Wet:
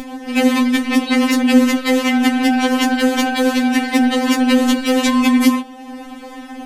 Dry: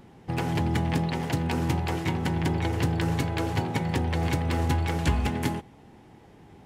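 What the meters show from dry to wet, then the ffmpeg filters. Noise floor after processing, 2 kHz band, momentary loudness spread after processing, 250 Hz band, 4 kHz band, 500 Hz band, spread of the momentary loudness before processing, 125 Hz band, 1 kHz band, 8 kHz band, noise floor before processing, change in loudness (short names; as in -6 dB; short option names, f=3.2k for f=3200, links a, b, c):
-34 dBFS, +14.5 dB, 17 LU, +16.5 dB, +15.5 dB, +12.5 dB, 3 LU, under -15 dB, +10.5 dB, +15.0 dB, -52 dBFS, +12.5 dB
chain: -af "bandreject=f=48.03:t=h:w=4,bandreject=f=96.06:t=h:w=4,bandreject=f=144.09:t=h:w=4,bandreject=f=192.12:t=h:w=4,bandreject=f=240.15:t=h:w=4,bandreject=f=288.18:t=h:w=4,bandreject=f=336.21:t=h:w=4,bandreject=f=384.24:t=h:w=4,bandreject=f=432.27:t=h:w=4,bandreject=f=480.3:t=h:w=4,bandreject=f=528.33:t=h:w=4,bandreject=f=576.36:t=h:w=4,bandreject=f=624.39:t=h:w=4,bandreject=f=672.42:t=h:w=4,bandreject=f=720.45:t=h:w=4,bandreject=f=768.48:t=h:w=4,bandreject=f=816.51:t=h:w=4,bandreject=f=864.54:t=h:w=4,bandreject=f=912.57:t=h:w=4,bandreject=f=960.6:t=h:w=4,bandreject=f=1.00863k:t=h:w=4,bandreject=f=1.05666k:t=h:w=4,bandreject=f=1.10469k:t=h:w=4,bandreject=f=1.15272k:t=h:w=4,bandreject=f=1.20075k:t=h:w=4,bandreject=f=1.24878k:t=h:w=4,bandreject=f=1.29681k:t=h:w=4,bandreject=f=1.34484k:t=h:w=4,bandreject=f=1.39287k:t=h:w=4,bandreject=f=1.4409k:t=h:w=4,bandreject=f=1.48893k:t=h:w=4,bandreject=f=1.53696k:t=h:w=4,acompressor=mode=upward:threshold=-39dB:ratio=2.5,alimiter=level_in=17.5dB:limit=-1dB:release=50:level=0:latency=1,afftfilt=real='re*3.46*eq(mod(b,12),0)':imag='im*3.46*eq(mod(b,12),0)':win_size=2048:overlap=0.75,volume=1.5dB"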